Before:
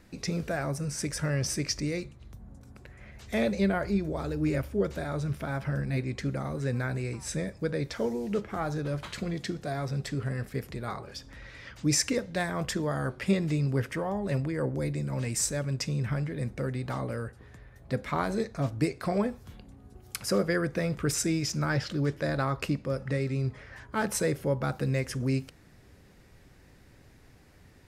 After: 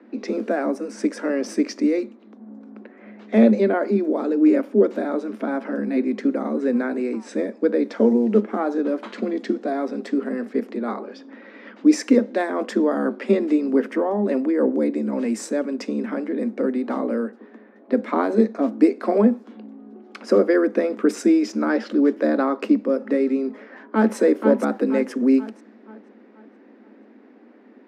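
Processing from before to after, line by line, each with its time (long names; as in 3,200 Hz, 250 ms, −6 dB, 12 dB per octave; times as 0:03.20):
0:23.50–0:24.16: delay throw 480 ms, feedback 45%, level −5 dB
whole clip: low-pass that shuts in the quiet parts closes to 2,800 Hz, open at −27.5 dBFS; Chebyshev high-pass filter 210 Hz, order 10; spectral tilt −4.5 dB per octave; level +7 dB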